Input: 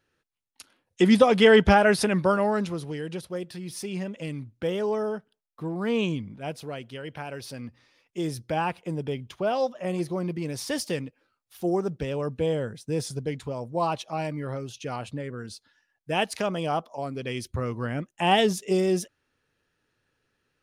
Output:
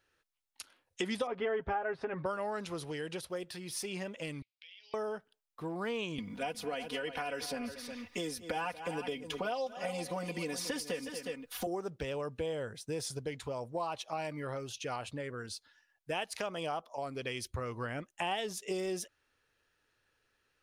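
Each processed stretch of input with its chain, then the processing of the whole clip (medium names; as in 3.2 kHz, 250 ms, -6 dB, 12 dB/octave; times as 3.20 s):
1.27–2.26 s: low-pass 1.4 kHz + comb 7.4 ms, depth 59%
4.42–4.94 s: elliptic band-pass 2.2–5 kHz + compression 8:1, threshold -50 dBFS
6.18–11.67 s: comb 4.1 ms, depth 93% + multi-tap echo 232/361 ms -17/-14 dB + three bands compressed up and down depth 70%
whole clip: peaking EQ 180 Hz -10 dB 2.1 oct; compression 4:1, threshold -34 dBFS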